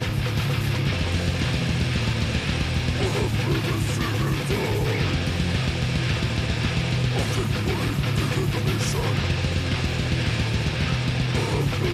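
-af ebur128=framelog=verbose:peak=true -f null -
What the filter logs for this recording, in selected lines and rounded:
Integrated loudness:
  I:         -24.0 LUFS
  Threshold: -34.0 LUFS
Loudness range:
  LRA:         0.1 LU
  Threshold: -43.9 LUFS
  LRA low:   -24.0 LUFS
  LRA high:  -23.9 LUFS
True peak:
  Peak:      -11.9 dBFS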